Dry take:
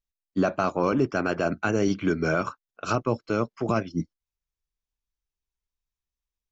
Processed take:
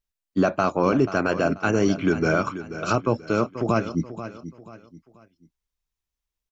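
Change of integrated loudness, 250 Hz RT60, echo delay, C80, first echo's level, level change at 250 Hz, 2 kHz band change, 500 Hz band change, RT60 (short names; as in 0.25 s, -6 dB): +3.0 dB, none, 0.485 s, none, -12.5 dB, +3.5 dB, +3.0 dB, +3.0 dB, none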